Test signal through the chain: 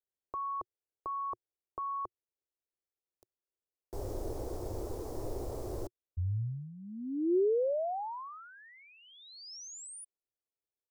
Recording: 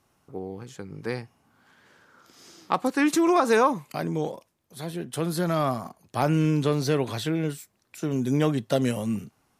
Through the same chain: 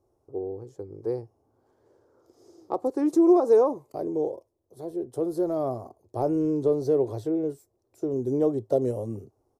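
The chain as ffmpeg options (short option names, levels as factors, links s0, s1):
-af "firequalizer=gain_entry='entry(110,0);entry(170,-17);entry(360,6);entry(1500,-22);entry(2700,-28);entry(5200,-15)':delay=0.05:min_phase=1"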